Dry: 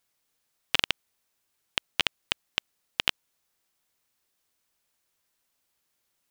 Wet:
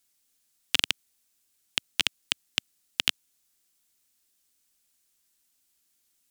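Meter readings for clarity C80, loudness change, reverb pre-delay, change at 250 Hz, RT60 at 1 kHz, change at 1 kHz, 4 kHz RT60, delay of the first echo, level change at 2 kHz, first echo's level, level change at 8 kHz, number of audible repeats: no reverb, +1.0 dB, no reverb, +0.5 dB, no reverb, -5.0 dB, no reverb, no echo, -0.5 dB, no echo, +6.5 dB, no echo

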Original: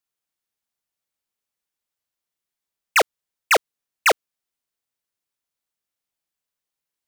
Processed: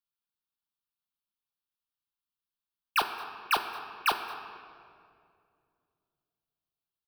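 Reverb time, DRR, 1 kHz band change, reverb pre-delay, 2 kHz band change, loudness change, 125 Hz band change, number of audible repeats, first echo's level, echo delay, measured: 2.4 s, 6.0 dB, -7.0 dB, 5 ms, -11.5 dB, -11.0 dB, no reading, 1, -20.5 dB, 220 ms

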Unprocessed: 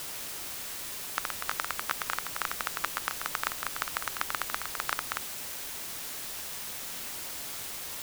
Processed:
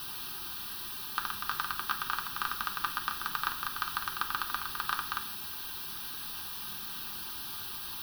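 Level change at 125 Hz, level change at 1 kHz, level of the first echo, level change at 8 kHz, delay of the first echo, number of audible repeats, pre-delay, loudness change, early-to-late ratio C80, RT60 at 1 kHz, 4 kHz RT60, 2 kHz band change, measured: +0.5 dB, +1.5 dB, no echo, -8.0 dB, no echo, no echo, 3 ms, -1.0 dB, 15.0 dB, 0.65 s, 0.80 s, -1.0 dB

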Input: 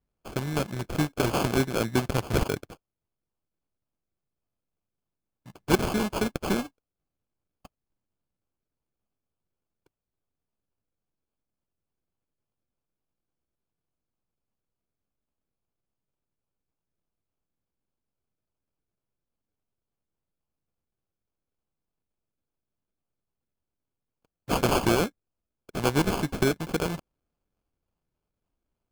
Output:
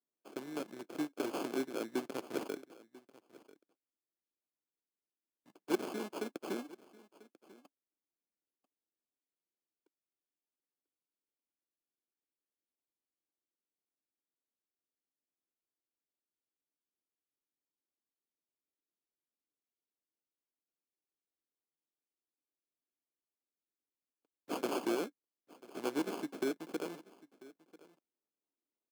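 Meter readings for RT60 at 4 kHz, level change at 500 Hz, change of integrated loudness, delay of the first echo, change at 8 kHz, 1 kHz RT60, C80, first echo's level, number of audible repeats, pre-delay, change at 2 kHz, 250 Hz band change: no reverb, -10.5 dB, -12.0 dB, 992 ms, -14.5 dB, no reverb, no reverb, -20.5 dB, 1, no reverb, -14.0 dB, -10.5 dB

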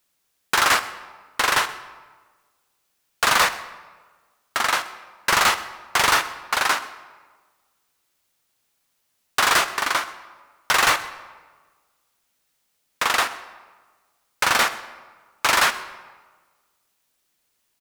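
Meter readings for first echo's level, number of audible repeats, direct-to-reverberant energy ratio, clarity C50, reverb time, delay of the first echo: -21.5 dB, 1, 11.5 dB, 13.0 dB, 1.4 s, 128 ms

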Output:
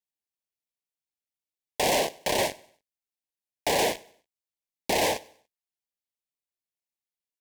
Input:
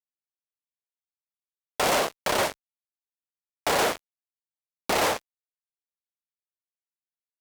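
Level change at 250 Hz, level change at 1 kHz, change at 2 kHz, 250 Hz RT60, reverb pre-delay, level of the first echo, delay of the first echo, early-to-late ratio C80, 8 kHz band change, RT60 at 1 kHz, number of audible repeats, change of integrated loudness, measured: 0.0 dB, -2.5 dB, -2.5 dB, no reverb, no reverb, -23.0 dB, 96 ms, no reverb, 0.0 dB, no reverb, 2, -1.0 dB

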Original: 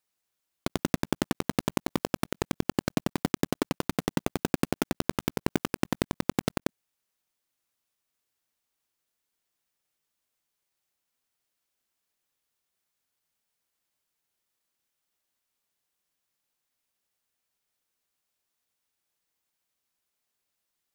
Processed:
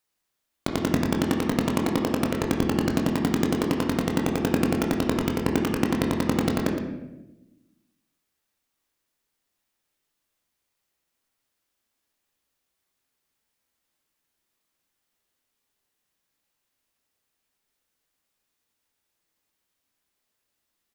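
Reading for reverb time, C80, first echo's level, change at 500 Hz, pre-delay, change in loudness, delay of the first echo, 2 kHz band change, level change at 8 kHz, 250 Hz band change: 1.0 s, 5.5 dB, -10.0 dB, +6.0 dB, 14 ms, +6.0 dB, 116 ms, +4.5 dB, +2.5 dB, +7.0 dB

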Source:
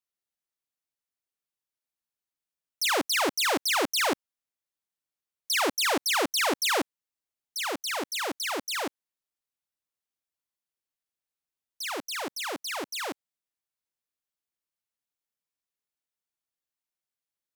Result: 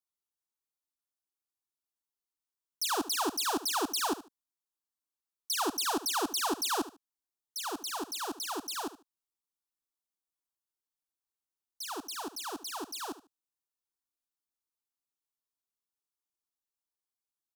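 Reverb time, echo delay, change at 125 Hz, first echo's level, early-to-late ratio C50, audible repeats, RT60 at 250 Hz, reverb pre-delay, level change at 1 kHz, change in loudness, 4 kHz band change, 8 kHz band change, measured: no reverb, 74 ms, under -10 dB, -15.0 dB, no reverb, 2, no reverb, no reverb, -3.5 dB, -5.5 dB, -6.0 dB, -3.0 dB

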